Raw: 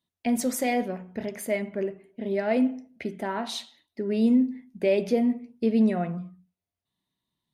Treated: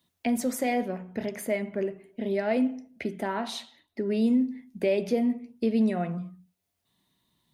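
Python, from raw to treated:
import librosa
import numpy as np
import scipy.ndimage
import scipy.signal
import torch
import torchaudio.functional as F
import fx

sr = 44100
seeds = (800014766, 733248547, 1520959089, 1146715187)

y = fx.high_shelf(x, sr, hz=11000.0, db=3.0)
y = fx.band_squash(y, sr, depth_pct=40)
y = F.gain(torch.from_numpy(y), -1.5).numpy()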